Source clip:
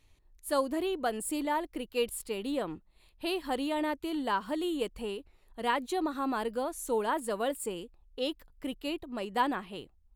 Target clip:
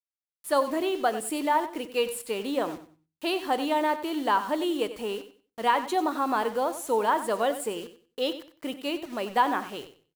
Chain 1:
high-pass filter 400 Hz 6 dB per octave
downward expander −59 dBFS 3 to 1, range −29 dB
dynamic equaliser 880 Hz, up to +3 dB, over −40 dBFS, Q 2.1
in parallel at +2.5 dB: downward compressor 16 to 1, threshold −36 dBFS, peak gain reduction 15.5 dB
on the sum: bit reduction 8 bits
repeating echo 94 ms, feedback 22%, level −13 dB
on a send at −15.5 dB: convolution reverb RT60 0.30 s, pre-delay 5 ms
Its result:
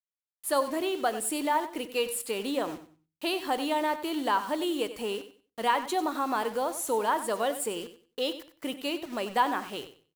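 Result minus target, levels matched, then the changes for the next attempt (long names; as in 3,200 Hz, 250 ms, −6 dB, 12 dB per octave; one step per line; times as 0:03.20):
downward compressor: peak gain reduction +8.5 dB; 8,000 Hz band +5.5 dB
add after high-pass filter: high-shelf EQ 3,800 Hz −6 dB
change: downward compressor 16 to 1, threshold −27.5 dBFS, peak gain reduction 7.5 dB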